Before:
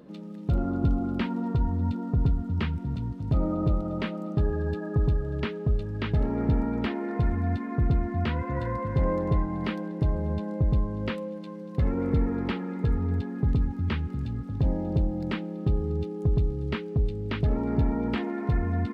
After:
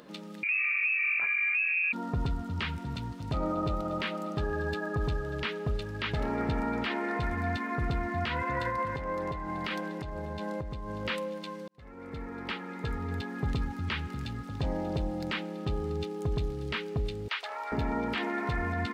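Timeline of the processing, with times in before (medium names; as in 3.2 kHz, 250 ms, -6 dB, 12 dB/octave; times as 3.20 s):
0.43–1.93 s: frequency inversion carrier 2.6 kHz
8.69–11.05 s: compression 12:1, threshold -28 dBFS
11.68–13.47 s: fade in
17.28–17.72 s: high-pass 720 Hz 24 dB/octave
whole clip: tilt shelf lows -9 dB, about 640 Hz; peak limiter -24 dBFS; trim +2 dB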